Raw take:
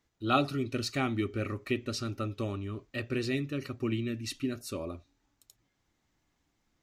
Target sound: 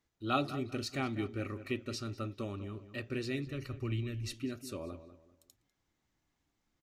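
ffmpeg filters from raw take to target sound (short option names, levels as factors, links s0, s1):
-filter_complex "[0:a]asplit=2[s0][s1];[s1]adelay=197,lowpass=f=2600:p=1,volume=0.237,asplit=2[s2][s3];[s3]adelay=197,lowpass=f=2600:p=1,volume=0.32,asplit=2[s4][s5];[s5]adelay=197,lowpass=f=2600:p=1,volume=0.32[s6];[s0][s2][s4][s6]amix=inputs=4:normalize=0,asplit=3[s7][s8][s9];[s7]afade=t=out:st=3.45:d=0.02[s10];[s8]asubboost=boost=8.5:cutoff=82,afade=t=in:st=3.45:d=0.02,afade=t=out:st=4.32:d=0.02[s11];[s9]afade=t=in:st=4.32:d=0.02[s12];[s10][s11][s12]amix=inputs=3:normalize=0,volume=0.562"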